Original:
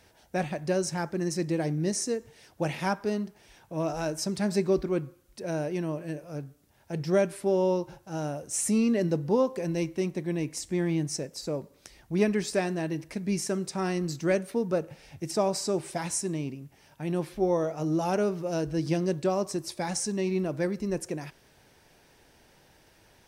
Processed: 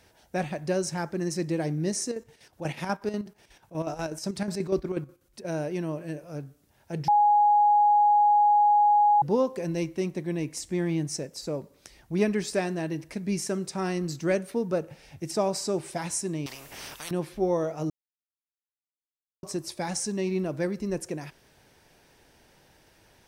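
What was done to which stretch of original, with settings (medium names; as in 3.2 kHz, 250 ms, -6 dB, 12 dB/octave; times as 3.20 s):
2.04–5.45 s: square tremolo 8.2 Hz, depth 60%, duty 60%
7.08–9.22 s: bleep 830 Hz -16.5 dBFS
16.46–17.11 s: spectrum-flattening compressor 10:1
17.90–19.43 s: mute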